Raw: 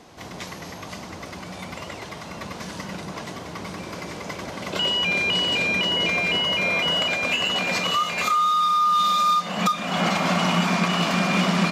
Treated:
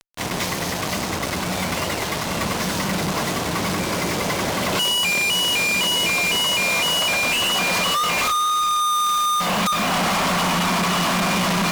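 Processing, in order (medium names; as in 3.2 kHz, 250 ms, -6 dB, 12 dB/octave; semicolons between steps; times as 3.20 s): dynamic bell 1 kHz, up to +6 dB, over -37 dBFS, Q 2.1; fuzz box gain 45 dB, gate -38 dBFS; trim -6 dB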